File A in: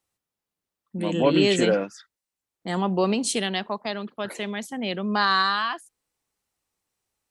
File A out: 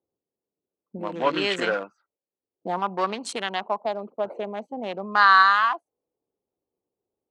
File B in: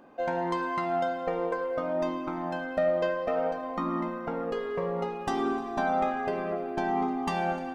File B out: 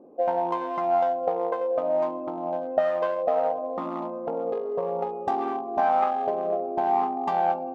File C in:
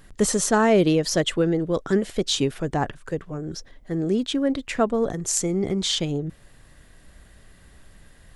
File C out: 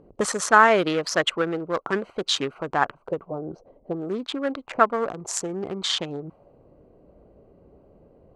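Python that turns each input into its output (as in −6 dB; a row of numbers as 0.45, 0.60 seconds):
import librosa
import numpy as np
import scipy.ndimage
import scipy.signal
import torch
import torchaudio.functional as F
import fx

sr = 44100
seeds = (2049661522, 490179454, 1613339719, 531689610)

y = fx.wiener(x, sr, points=25)
y = fx.low_shelf(y, sr, hz=140.0, db=6.5)
y = fx.auto_wah(y, sr, base_hz=410.0, top_hz=1300.0, q=2.0, full_db=-20.5, direction='up')
y = fx.high_shelf(y, sr, hz=3500.0, db=11.0)
y = y * 10.0 ** (-26 / 20.0) / np.sqrt(np.mean(np.square(y)))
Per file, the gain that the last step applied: +8.0, +9.0, +11.0 decibels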